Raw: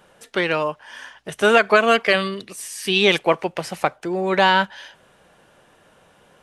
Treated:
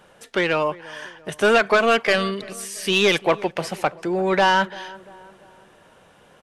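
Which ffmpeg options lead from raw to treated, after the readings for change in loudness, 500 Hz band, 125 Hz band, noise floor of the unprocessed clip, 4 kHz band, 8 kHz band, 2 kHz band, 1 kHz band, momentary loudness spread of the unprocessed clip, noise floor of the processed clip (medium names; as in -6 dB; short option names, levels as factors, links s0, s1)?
-1.5 dB, -0.5 dB, 0.0 dB, -56 dBFS, -2.0 dB, +1.0 dB, -1.5 dB, -1.0 dB, 16 LU, -53 dBFS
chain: -filter_complex "[0:a]highshelf=f=8300:g=-3,asoftclip=type=tanh:threshold=0.282,asplit=2[s0][s1];[s1]adelay=342,lowpass=f=1500:p=1,volume=0.106,asplit=2[s2][s3];[s3]adelay=342,lowpass=f=1500:p=1,volume=0.49,asplit=2[s4][s5];[s5]adelay=342,lowpass=f=1500:p=1,volume=0.49,asplit=2[s6][s7];[s7]adelay=342,lowpass=f=1500:p=1,volume=0.49[s8];[s0][s2][s4][s6][s8]amix=inputs=5:normalize=0,volume=1.19"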